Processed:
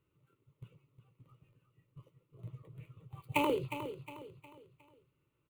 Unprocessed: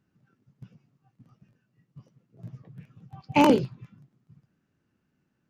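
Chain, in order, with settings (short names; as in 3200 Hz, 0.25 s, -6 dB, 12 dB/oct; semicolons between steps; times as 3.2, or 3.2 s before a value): switching dead time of 0.072 ms; compressor 5:1, threshold -24 dBFS, peak gain reduction 9.5 dB; fixed phaser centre 1100 Hz, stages 8; on a send: feedback echo 0.36 s, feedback 39%, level -10.5 dB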